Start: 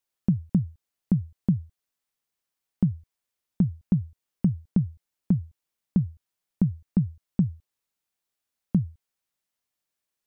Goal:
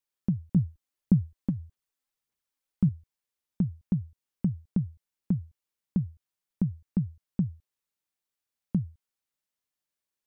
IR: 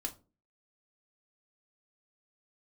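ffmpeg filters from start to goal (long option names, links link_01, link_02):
-filter_complex "[0:a]bandreject=frequency=690:width=12,asettb=1/sr,asplit=3[link_01][link_02][link_03];[link_01]atrim=end=0.564[link_04];[link_02]atrim=start=0.56:end=2.89,asetpts=PTS-STARTPTS,afade=type=in:duration=0.004:curve=qsin,afade=type=out:start_time=2.326:duration=0.004:curve=qsin,aphaser=in_gain=1:out_gain=1:delay=3.9:decay=0.49:speed=1.7:type=sinusoidal[link_05];[link_03]atrim=start=2.886[link_06];[link_04][link_05]acrossfade=duration=0.004:curve1=hsin:curve2=qsin[link_07];[link_07][link_06]acrossfade=duration=0.004:curve1=qsin:curve2=hsin,volume=-4.5dB"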